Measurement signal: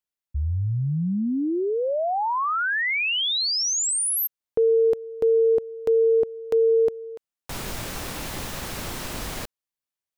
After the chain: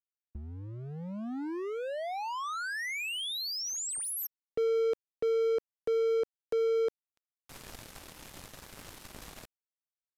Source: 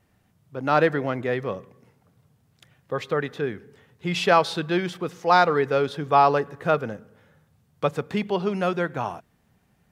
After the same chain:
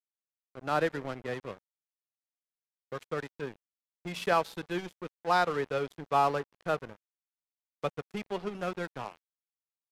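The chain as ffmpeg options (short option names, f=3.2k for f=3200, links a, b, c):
-filter_complex "[0:a]acrossover=split=270[a][b];[a]acompressor=threshold=-26dB:ratio=6:release=568:knee=2.83:detection=peak[c];[c][b]amix=inputs=2:normalize=0,aeval=exprs='sgn(val(0))*max(abs(val(0))-0.0266,0)':c=same,aresample=32000,aresample=44100,volume=-7.5dB"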